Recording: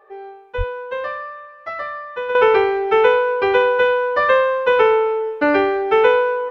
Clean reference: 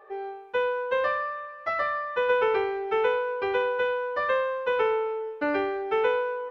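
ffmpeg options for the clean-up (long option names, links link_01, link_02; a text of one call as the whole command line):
ffmpeg -i in.wav -filter_complex "[0:a]asplit=3[link_01][link_02][link_03];[link_01]afade=type=out:start_time=0.57:duration=0.02[link_04];[link_02]highpass=frequency=140:width=0.5412,highpass=frequency=140:width=1.3066,afade=type=in:start_time=0.57:duration=0.02,afade=type=out:start_time=0.69:duration=0.02[link_05];[link_03]afade=type=in:start_time=0.69:duration=0.02[link_06];[link_04][link_05][link_06]amix=inputs=3:normalize=0,asetnsamples=nb_out_samples=441:pad=0,asendcmd='2.35 volume volume -10.5dB',volume=0dB" out.wav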